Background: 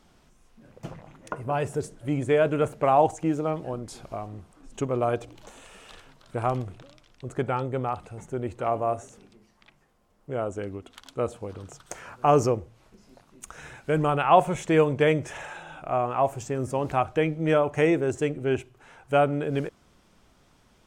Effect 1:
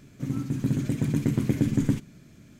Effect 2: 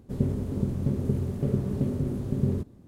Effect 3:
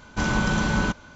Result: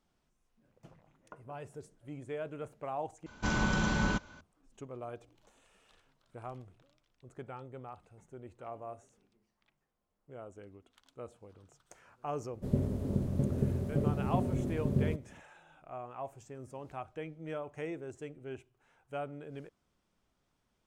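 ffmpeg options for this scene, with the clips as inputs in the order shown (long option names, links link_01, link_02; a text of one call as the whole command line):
ffmpeg -i bed.wav -i cue0.wav -i cue1.wav -i cue2.wav -filter_complex "[0:a]volume=-18dB[link_01];[2:a]equalizer=frequency=610:width_type=o:width=0.36:gain=7.5[link_02];[link_01]asplit=2[link_03][link_04];[link_03]atrim=end=3.264[link_05];[3:a]atrim=end=1.15,asetpts=PTS-STARTPTS,volume=-7dB[link_06];[link_04]atrim=start=4.406[link_07];[link_02]atrim=end=2.87,asetpts=PTS-STARTPTS,volume=-4.5dB,afade=type=in:duration=0.004:curve=hsin,afade=type=out:start_time=2.866:duration=0.004:curve=hsin,adelay=12530[link_08];[link_05][link_06]acrossfade=duration=0.004:curve1=hsin:curve2=hsin[link_09];[link_09][link_07]acrossfade=duration=0.004:curve1=hsin:curve2=hsin[link_10];[link_10][link_08]amix=inputs=2:normalize=0" out.wav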